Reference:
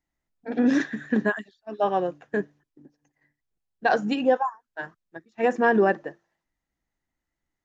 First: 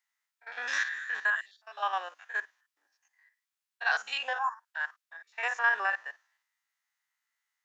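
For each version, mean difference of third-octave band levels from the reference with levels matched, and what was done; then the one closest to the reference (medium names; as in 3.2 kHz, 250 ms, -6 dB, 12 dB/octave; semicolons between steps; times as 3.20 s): 12.0 dB: spectrogram pixelated in time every 50 ms; high-pass 1.1 kHz 24 dB/octave; in parallel at +2.5 dB: peak limiter -26.5 dBFS, peak gain reduction 11.5 dB; on the sum: trim -1.5 dB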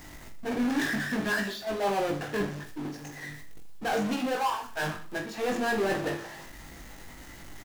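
15.5 dB: reverse; compression, threshold -29 dBFS, peak gain reduction 13.5 dB; reverse; power-law waveshaper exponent 0.35; reverse bouncing-ball echo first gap 20 ms, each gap 1.3×, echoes 5; trim -6.5 dB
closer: first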